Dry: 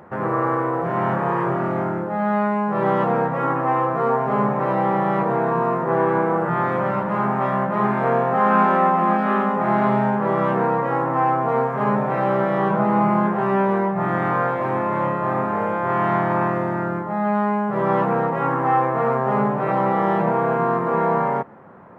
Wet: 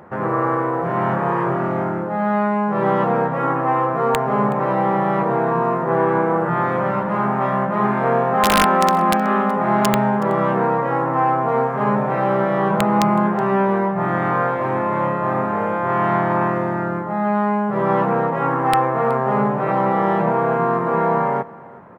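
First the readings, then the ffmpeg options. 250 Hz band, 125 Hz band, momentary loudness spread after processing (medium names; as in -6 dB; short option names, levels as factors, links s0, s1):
+1.5 dB, +1.5 dB, 4 LU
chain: -af "aeval=exprs='(mod(2.51*val(0)+1,2)-1)/2.51':c=same,aecho=1:1:372:0.0794,volume=1.19"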